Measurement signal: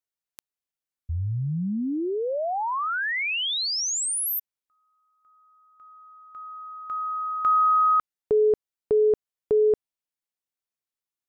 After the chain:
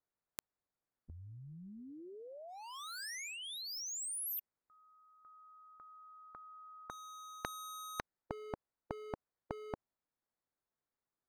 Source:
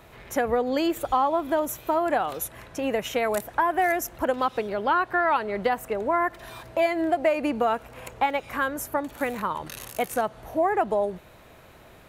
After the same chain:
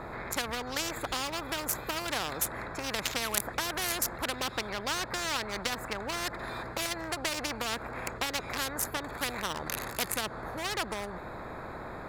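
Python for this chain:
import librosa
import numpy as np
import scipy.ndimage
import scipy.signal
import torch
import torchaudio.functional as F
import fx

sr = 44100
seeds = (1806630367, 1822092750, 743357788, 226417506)

y = fx.wiener(x, sr, points=15)
y = fx.spectral_comp(y, sr, ratio=4.0)
y = y * librosa.db_to_amplitude(2.5)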